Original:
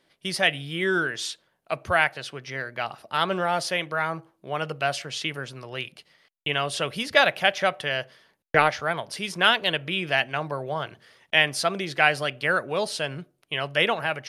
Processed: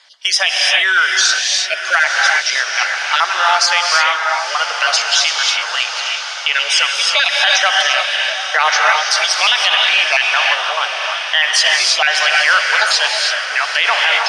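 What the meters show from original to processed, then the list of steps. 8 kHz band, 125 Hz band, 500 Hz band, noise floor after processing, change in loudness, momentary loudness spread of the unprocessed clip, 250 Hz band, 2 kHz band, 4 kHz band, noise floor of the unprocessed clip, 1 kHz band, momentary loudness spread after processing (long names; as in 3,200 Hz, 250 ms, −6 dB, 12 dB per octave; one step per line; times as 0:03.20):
+20.0 dB, below −30 dB, +1.5 dB, −23 dBFS, +12.0 dB, 13 LU, below −15 dB, +12.5 dB, +15.5 dB, −72 dBFS, +10.0 dB, 6 LU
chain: time-frequency cells dropped at random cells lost 24%
in parallel at 0 dB: downward compressor 8 to 1, threshold −35 dBFS, peak gain reduction 21 dB
on the sum: high-pass filter 830 Hz 24 dB per octave
feedback delay with all-pass diffusion 881 ms, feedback 63%, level −11.5 dB
reverb whose tail is shaped and stops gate 360 ms rising, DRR 2.5 dB
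log-companded quantiser 8 bits
low-pass with resonance 5,900 Hz, resonance Q 2.9
boost into a limiter +12.5 dB
level −1 dB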